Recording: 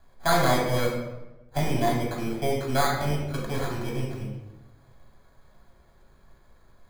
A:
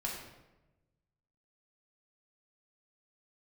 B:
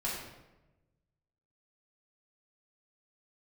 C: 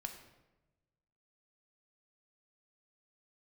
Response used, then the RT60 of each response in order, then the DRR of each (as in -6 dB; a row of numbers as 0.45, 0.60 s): A; 1.0, 1.0, 1.1 s; -3.5, -7.5, 4.5 dB